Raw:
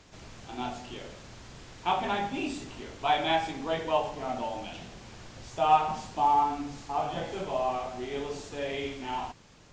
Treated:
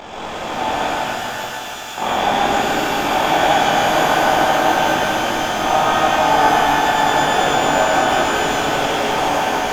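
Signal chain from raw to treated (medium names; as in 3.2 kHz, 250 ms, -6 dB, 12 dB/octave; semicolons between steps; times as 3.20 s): spectral levelling over time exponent 0.4; two-band feedback delay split 430 Hz, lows 489 ms, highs 160 ms, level -3 dB; AM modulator 44 Hz, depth 75%; 0.90–1.98 s: differentiator; pitch-shifted reverb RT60 3.8 s, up +12 st, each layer -8 dB, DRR -8 dB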